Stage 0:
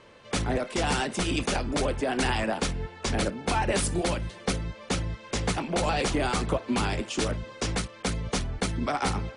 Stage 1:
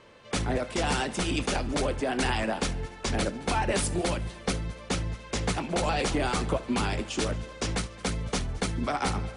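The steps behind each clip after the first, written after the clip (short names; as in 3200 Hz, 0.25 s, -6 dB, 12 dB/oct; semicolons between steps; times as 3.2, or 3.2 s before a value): multi-head echo 72 ms, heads first and third, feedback 49%, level -22 dB; gain -1 dB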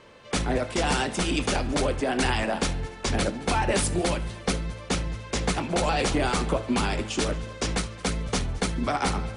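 de-hum 109 Hz, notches 39; gain +3 dB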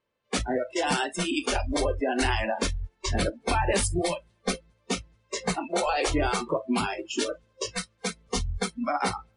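spectral noise reduction 29 dB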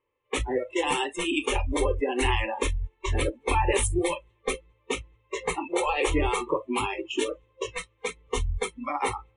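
low-pass opened by the level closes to 2600 Hz, open at -22.5 dBFS; fixed phaser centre 1000 Hz, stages 8; gain +3.5 dB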